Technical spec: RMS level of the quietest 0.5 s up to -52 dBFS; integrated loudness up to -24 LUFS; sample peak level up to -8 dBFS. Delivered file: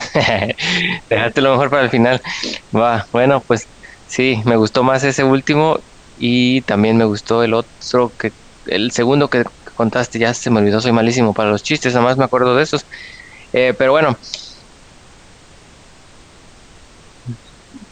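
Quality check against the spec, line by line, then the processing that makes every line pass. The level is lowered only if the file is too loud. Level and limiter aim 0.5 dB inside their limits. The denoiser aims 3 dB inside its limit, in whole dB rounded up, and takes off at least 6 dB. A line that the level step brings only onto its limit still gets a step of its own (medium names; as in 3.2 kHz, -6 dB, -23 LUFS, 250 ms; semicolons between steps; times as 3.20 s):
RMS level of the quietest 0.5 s -43 dBFS: fail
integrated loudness -15.0 LUFS: fail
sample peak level -1.5 dBFS: fail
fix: trim -9.5 dB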